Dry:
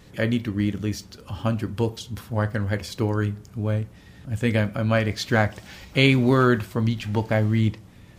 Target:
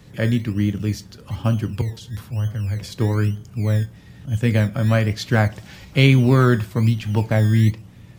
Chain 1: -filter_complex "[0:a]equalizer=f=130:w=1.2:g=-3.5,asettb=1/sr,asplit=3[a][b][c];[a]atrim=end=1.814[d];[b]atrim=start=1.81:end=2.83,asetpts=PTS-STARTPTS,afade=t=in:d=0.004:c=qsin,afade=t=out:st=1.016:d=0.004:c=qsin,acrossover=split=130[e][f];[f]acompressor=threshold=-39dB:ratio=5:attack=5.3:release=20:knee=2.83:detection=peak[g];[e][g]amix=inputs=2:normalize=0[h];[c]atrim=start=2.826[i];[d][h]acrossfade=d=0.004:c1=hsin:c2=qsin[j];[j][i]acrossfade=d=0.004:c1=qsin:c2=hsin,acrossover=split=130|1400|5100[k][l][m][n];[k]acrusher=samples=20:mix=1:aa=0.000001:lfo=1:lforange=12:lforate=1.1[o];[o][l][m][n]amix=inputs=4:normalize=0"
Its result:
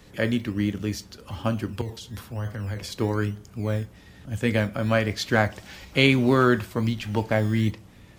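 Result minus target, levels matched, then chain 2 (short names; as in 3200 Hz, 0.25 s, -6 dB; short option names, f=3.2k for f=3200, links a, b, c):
125 Hz band -4.5 dB
-filter_complex "[0:a]equalizer=f=130:w=1.2:g=7.5,asettb=1/sr,asplit=3[a][b][c];[a]atrim=end=1.814[d];[b]atrim=start=1.81:end=2.83,asetpts=PTS-STARTPTS,afade=t=in:d=0.004:c=qsin,afade=t=out:st=1.016:d=0.004:c=qsin,acrossover=split=130[e][f];[f]acompressor=threshold=-39dB:ratio=5:attack=5.3:release=20:knee=2.83:detection=peak[g];[e][g]amix=inputs=2:normalize=0[h];[c]atrim=start=2.826[i];[d][h]acrossfade=d=0.004:c1=hsin:c2=qsin[j];[j][i]acrossfade=d=0.004:c1=qsin:c2=hsin,acrossover=split=130|1400|5100[k][l][m][n];[k]acrusher=samples=20:mix=1:aa=0.000001:lfo=1:lforange=12:lforate=1.1[o];[o][l][m][n]amix=inputs=4:normalize=0"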